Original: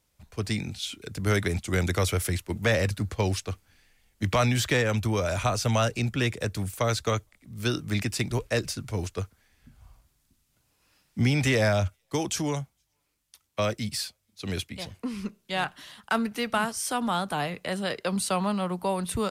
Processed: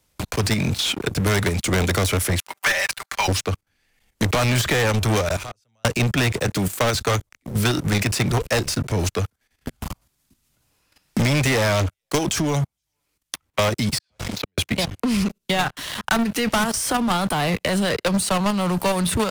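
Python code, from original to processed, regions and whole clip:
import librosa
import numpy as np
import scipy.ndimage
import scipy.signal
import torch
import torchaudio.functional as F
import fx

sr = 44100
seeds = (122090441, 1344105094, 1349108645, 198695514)

y = fx.chain(x, sr, fx.highpass(hz=880.0, slope=24),
    fx.comb(ms=5.1, depth=0.66), at=(2.39, 3.28))
y = fx.chain(y, sr, fx.gate_flip(shuts_db=-22.0, range_db=-37),
    fx.sustainer(db_per_s=85.0), at=(5.28, 5.85))
y = fx.chain(y, sr, fx.highpass(hz=160.0, slope=12),
    fx.resample_linear(factor=2), at=(6.47, 6.95))
y = fx.chain(y, sr, fx.lowpass(hz=6100.0, slope=12),
    fx.gate_flip(shuts_db=-29.0, range_db=-41),
    fx.pre_swell(db_per_s=53.0), at=(13.98, 14.58))
y = fx.level_steps(y, sr, step_db=13)
y = fx.leveller(y, sr, passes=5)
y = fx.band_squash(y, sr, depth_pct=70)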